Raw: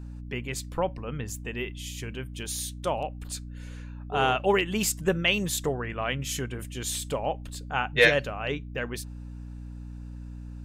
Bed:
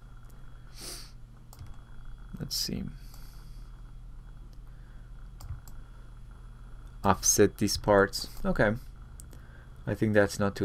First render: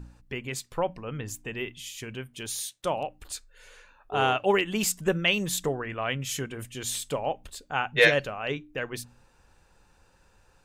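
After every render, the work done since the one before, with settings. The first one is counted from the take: de-hum 60 Hz, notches 5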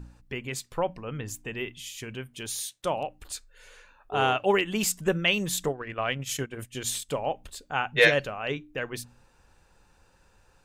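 5.66–7.09 transient shaper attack +4 dB, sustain -10 dB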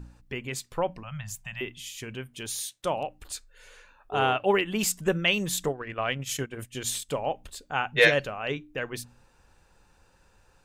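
1.03–1.61 elliptic band-stop 190–640 Hz; 4.19–4.79 bell 6600 Hz -10 dB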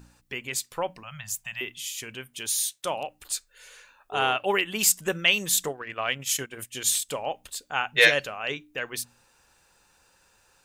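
tilt +2.5 dB/oct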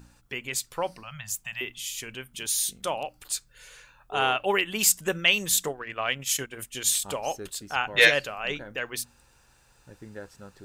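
add bed -18 dB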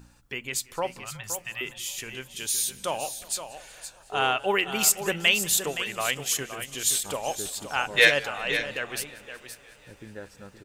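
on a send: echo 0.519 s -10.5 dB; on the sum: warbling echo 0.184 s, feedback 80%, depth 110 cents, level -23 dB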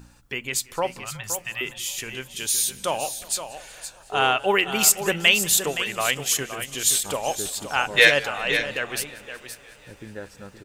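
gain +4 dB; limiter -1 dBFS, peak gain reduction 2.5 dB

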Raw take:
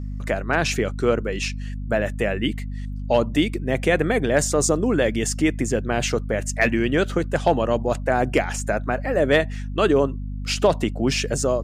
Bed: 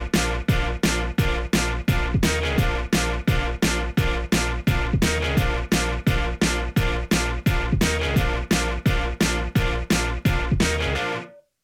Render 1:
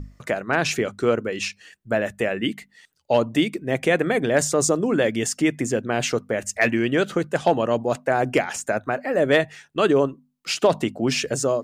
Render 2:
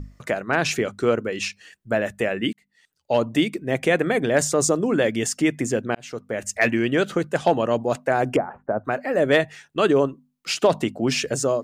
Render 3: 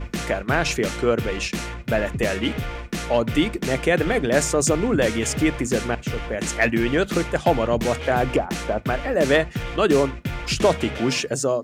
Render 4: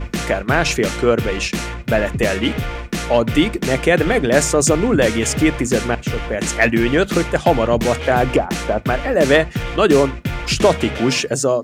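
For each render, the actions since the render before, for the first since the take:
notches 50/100/150/200/250 Hz
2.53–3.27 fade in; 5.95–6.51 fade in; 8.36–8.85 inverse Chebyshev low-pass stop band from 5100 Hz, stop band 70 dB
add bed -7.5 dB
gain +5 dB; limiter -2 dBFS, peak gain reduction 1 dB

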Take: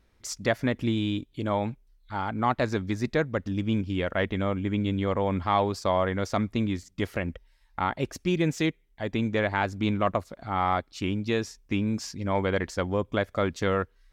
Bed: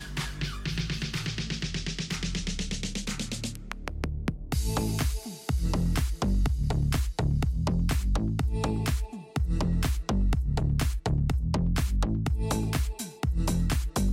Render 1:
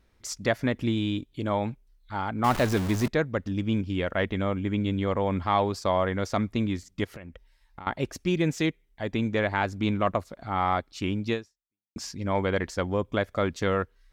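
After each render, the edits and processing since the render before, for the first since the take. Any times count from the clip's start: 2.44–3.08 zero-crossing step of -26.5 dBFS; 7.04–7.87 compressor 5:1, threshold -39 dBFS; 11.33–11.96 fade out exponential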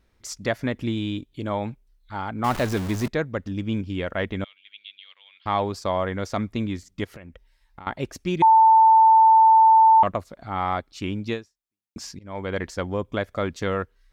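4.44–5.46 Butterworth band-pass 3300 Hz, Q 2.2; 8.42–10.03 bleep 890 Hz -10.5 dBFS; 12.19–12.61 fade in, from -22 dB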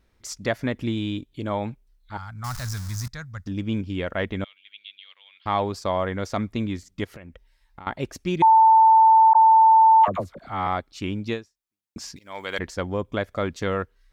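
2.17–3.47 EQ curve 120 Hz 0 dB, 370 Hz -28 dB, 1400 Hz -5 dB, 2900 Hz -13 dB, 5200 Hz +5 dB, 8600 Hz +2 dB; 9.33–10.67 dispersion lows, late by 55 ms, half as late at 690 Hz; 12.16–12.59 tilt +4.5 dB/oct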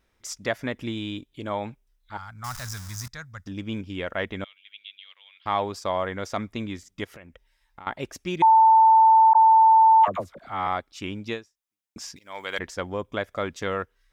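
low shelf 350 Hz -7.5 dB; notch 4300 Hz, Q 11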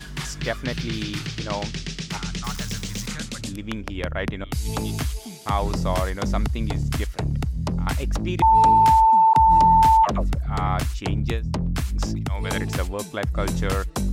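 add bed +1.5 dB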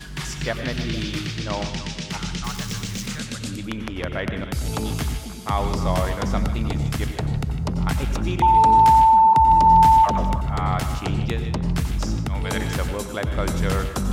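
delay with a stepping band-pass 0.154 s, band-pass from 3000 Hz, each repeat -1.4 oct, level -7.5 dB; plate-style reverb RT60 0.58 s, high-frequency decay 0.7×, pre-delay 80 ms, DRR 8 dB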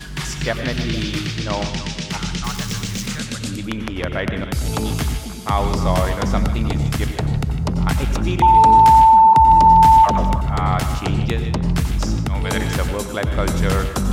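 gain +4 dB; limiter -3 dBFS, peak gain reduction 2.5 dB

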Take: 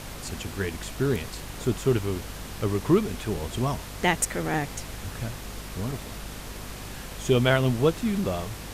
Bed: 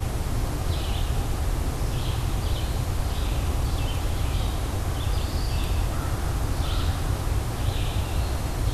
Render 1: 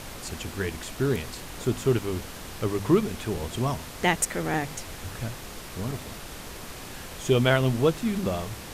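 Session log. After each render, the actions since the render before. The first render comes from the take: de-hum 50 Hz, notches 5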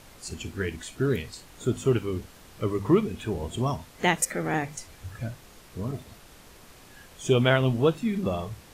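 noise print and reduce 11 dB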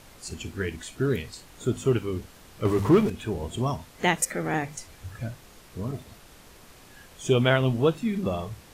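2.65–3.1 power-law curve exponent 0.7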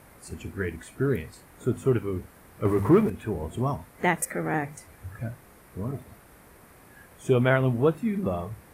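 HPF 44 Hz; band shelf 4500 Hz -11 dB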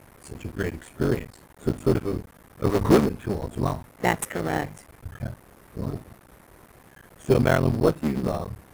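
cycle switcher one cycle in 3, muted; in parallel at -6.5 dB: sample-rate reducer 4800 Hz, jitter 0%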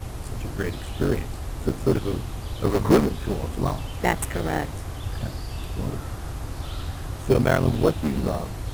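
add bed -6.5 dB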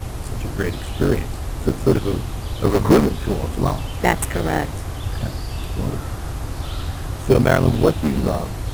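gain +5 dB; limiter -3 dBFS, peak gain reduction 2.5 dB

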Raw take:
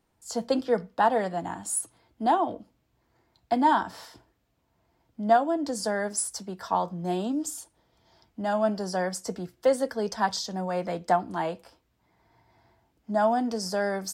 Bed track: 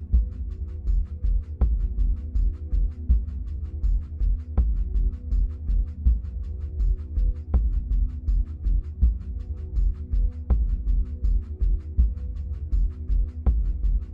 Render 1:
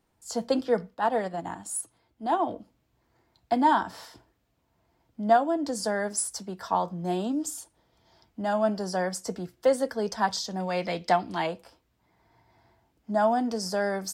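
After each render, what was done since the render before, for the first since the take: 0.9–2.43 transient shaper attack -9 dB, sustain -5 dB; 10.6–11.47 band shelf 3300 Hz +9.5 dB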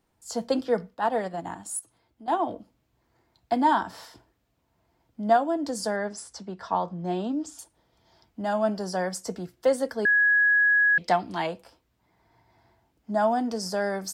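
1.79–2.28 compressor, threshold -43 dBFS; 5.96–7.59 air absorption 100 m; 10.05–10.98 bleep 1670 Hz -17 dBFS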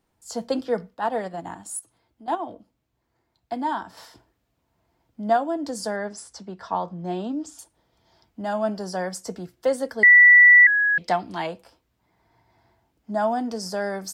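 2.35–3.97 gain -5 dB; 10.03–10.67 bleep 1960 Hz -8 dBFS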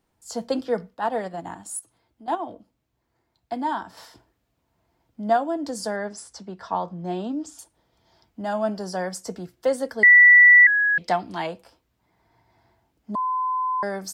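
13.15–13.83 bleep 1020 Hz -21.5 dBFS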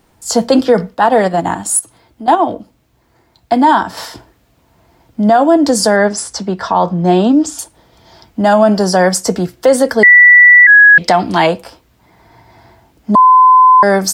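maximiser +19 dB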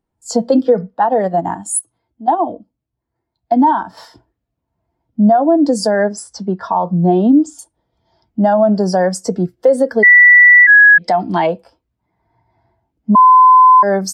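compressor 5:1, threshold -10 dBFS, peak gain reduction 6.5 dB; spectral expander 1.5:1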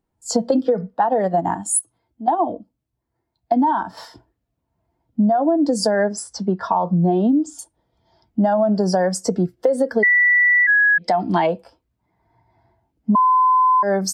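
compressor, threshold -14 dBFS, peak gain reduction 9 dB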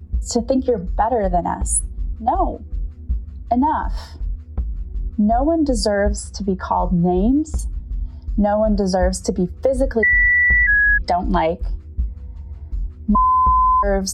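add bed track -2 dB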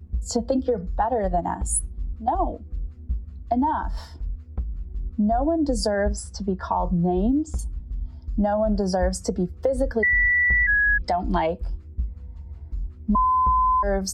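gain -5 dB

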